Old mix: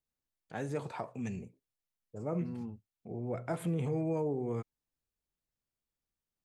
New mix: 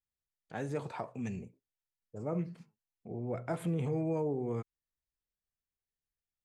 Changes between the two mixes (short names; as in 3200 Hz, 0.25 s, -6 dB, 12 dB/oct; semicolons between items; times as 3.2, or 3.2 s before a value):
second voice: add band-pass 1800 Hz, Q 9; master: add high shelf 8200 Hz -4 dB